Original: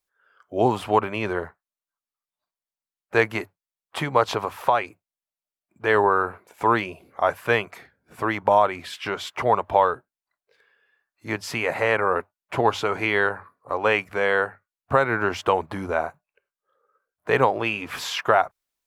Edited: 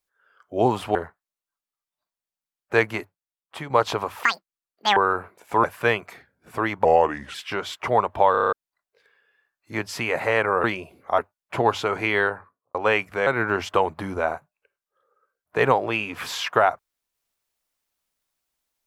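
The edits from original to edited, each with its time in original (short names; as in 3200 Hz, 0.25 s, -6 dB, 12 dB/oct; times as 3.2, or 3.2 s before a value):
0.95–1.36 cut
3.27–4.11 fade out quadratic, to -7.5 dB
4.64–6.06 speed 193%
6.73–7.28 move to 12.18
8.49–8.89 speed 80%
9.86 stutter in place 0.03 s, 7 plays
13.19–13.74 studio fade out
14.26–14.99 cut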